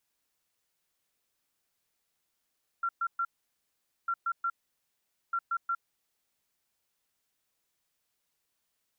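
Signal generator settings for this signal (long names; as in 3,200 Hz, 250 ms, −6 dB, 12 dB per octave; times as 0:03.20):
beeps in groups sine 1,370 Hz, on 0.06 s, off 0.12 s, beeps 3, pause 0.83 s, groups 3, −27 dBFS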